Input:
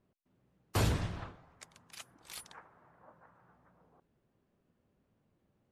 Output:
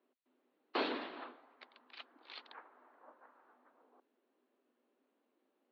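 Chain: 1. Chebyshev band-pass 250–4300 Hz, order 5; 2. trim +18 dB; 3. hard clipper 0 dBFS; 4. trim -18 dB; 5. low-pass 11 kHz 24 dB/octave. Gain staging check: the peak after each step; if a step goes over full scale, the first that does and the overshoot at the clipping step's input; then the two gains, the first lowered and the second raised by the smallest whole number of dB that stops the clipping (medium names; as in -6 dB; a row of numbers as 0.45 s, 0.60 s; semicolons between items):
-23.0 dBFS, -5.0 dBFS, -5.0 dBFS, -23.0 dBFS, -23.0 dBFS; nothing clips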